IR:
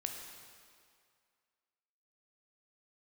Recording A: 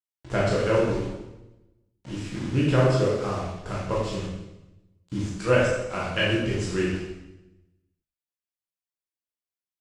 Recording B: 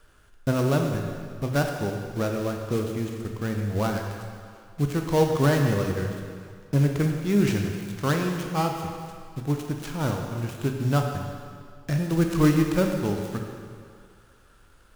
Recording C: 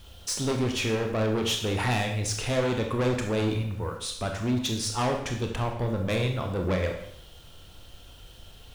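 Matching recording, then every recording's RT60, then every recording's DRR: B; 0.95, 2.2, 0.70 seconds; −7.0, 2.5, 3.0 decibels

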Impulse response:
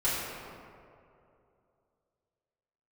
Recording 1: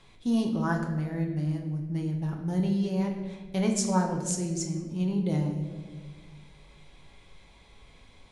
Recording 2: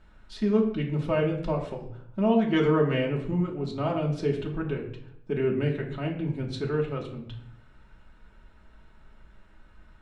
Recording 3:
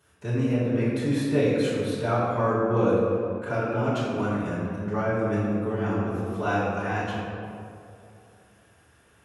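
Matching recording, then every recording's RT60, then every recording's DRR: 3; 1.7, 0.70, 2.6 seconds; 1.5, −1.5, −12.5 decibels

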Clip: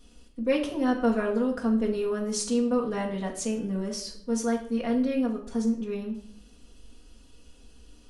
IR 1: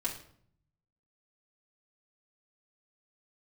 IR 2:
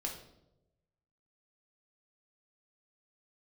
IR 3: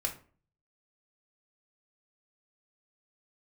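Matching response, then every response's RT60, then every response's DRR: 1; 0.60, 0.90, 0.40 seconds; −4.5, 0.0, 0.0 decibels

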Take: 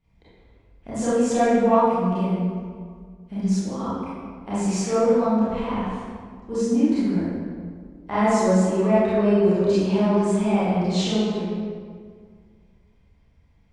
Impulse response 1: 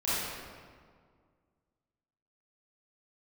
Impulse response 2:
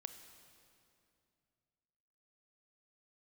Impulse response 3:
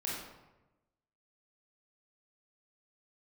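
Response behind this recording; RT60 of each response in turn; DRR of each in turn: 1; 1.9, 2.5, 1.0 seconds; −12.5, 8.5, −5.5 decibels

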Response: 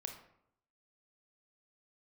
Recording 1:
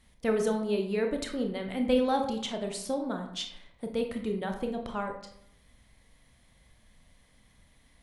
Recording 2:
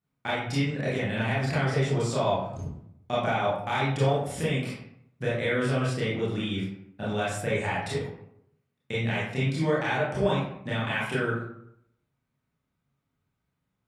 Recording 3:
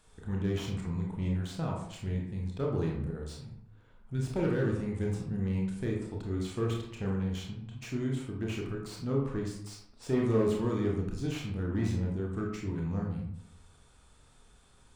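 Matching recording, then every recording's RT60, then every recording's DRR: 1; 0.75, 0.75, 0.75 seconds; 3.5, −9.0, −1.5 decibels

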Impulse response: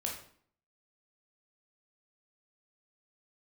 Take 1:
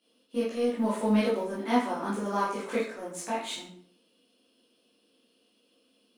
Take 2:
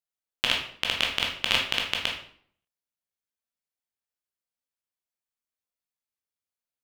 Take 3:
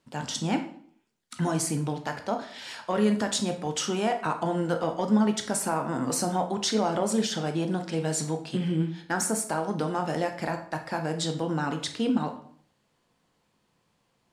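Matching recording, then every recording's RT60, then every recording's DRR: 2; 0.55, 0.55, 0.55 seconds; −9.5, −1.0, 5.0 decibels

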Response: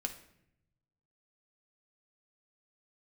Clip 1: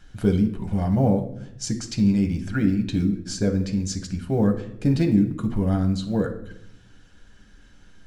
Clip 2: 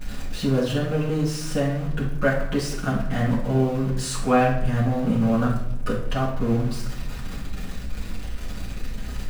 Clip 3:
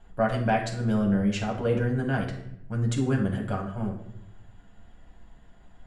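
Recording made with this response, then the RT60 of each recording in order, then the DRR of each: 1; 0.75, 0.75, 0.75 seconds; 4.5, −8.0, −1.0 decibels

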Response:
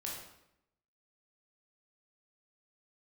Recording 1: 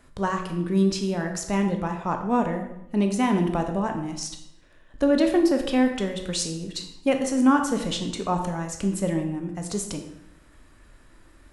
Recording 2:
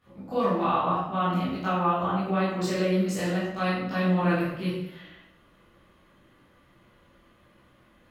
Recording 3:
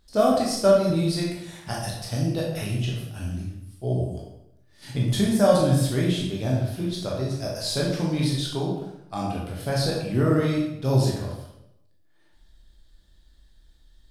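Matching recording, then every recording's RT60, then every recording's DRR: 3; 0.80, 0.80, 0.80 seconds; 4.5, −12.5, −3.5 decibels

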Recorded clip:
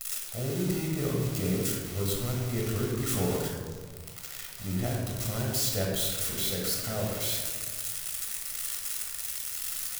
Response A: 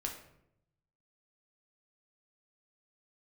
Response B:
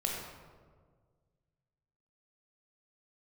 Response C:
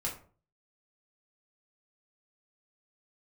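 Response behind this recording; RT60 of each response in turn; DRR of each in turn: B; 0.75, 1.7, 0.45 seconds; 0.5, −1.5, −3.0 decibels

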